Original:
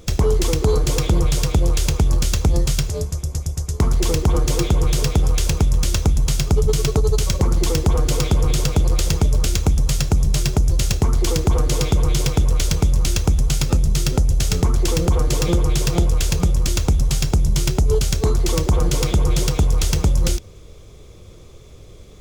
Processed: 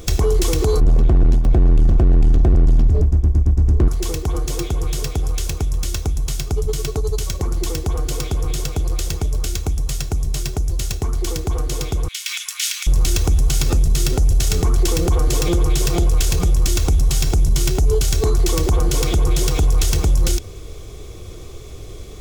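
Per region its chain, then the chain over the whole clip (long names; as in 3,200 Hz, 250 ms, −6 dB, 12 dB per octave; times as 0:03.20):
0:00.80–0:03.88: spectral tilt −4.5 dB per octave + hard clipping −6 dBFS
0:12.08–0:12.87: inverse Chebyshev high-pass filter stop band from 370 Hz, stop band 70 dB + dynamic equaliser 2,600 Hz, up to +7 dB, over −42 dBFS, Q 0.99
whole clip: brickwall limiter −18 dBFS; high-shelf EQ 8,800 Hz +5.5 dB; comb filter 2.7 ms, depth 34%; level +6.5 dB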